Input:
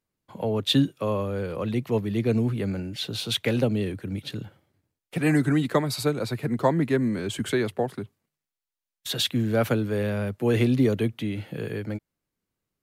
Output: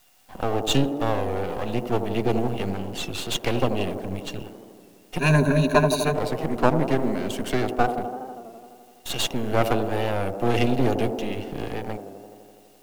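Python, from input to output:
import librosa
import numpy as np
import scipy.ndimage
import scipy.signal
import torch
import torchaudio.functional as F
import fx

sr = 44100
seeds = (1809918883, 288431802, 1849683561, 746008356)

p1 = fx.quant_dither(x, sr, seeds[0], bits=8, dither='triangular')
p2 = x + (p1 * 10.0 ** (-8.0 / 20.0))
p3 = fx.small_body(p2, sr, hz=(740.0, 2800.0), ring_ms=45, db=15)
p4 = np.maximum(p3, 0.0)
p5 = fx.ripple_eq(p4, sr, per_octave=1.5, db=18, at=(5.19, 6.14))
p6 = p5 + fx.echo_wet_bandpass(p5, sr, ms=83, feedback_pct=78, hz=450.0, wet_db=-6.5, dry=0)
y = fx.record_warp(p6, sr, rpm=33.33, depth_cents=100.0)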